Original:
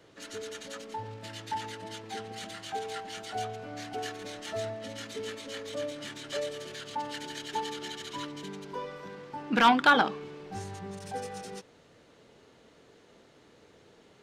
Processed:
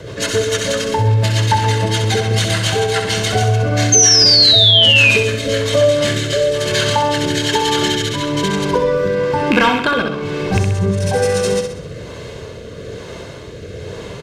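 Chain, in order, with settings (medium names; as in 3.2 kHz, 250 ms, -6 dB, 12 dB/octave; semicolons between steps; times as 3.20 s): rattle on loud lows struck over -33 dBFS, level -19 dBFS; peaking EQ 86 Hz +9.5 dB 2.4 oct; comb 1.9 ms, depth 50%; compression 6:1, threshold -36 dBFS, peak gain reduction 19.5 dB; rotary cabinet horn 7 Hz, later 1.1 Hz, at 3.28 s; painted sound fall, 3.92–5.11 s, 2.4–6.4 kHz -33 dBFS; flutter echo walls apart 11.1 m, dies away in 0.6 s; loudness maximiser +26 dB; trim -1 dB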